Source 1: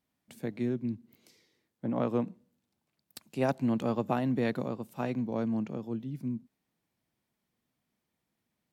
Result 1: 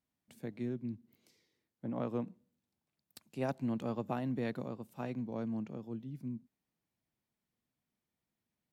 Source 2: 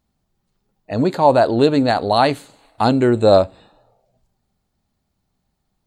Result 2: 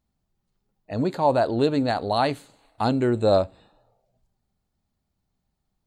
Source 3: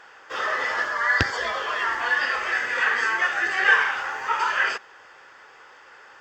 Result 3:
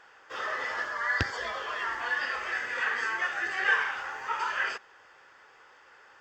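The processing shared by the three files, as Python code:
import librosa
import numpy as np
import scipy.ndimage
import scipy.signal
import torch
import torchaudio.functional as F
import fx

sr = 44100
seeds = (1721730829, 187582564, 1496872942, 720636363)

y = fx.low_shelf(x, sr, hz=120.0, db=4.0)
y = y * 10.0 ** (-7.5 / 20.0)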